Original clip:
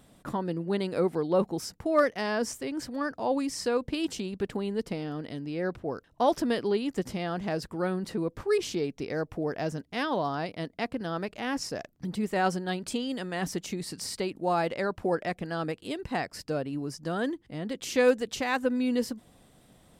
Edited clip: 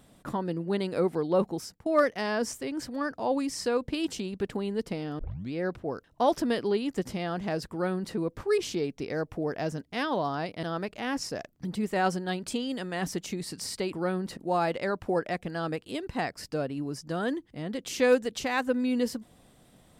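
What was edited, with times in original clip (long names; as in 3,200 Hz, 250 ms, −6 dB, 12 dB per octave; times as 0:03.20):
0:01.50–0:01.86: fade out, to −13.5 dB
0:05.19: tape start 0.34 s
0:07.71–0:08.15: duplicate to 0:14.33
0:10.63–0:11.03: remove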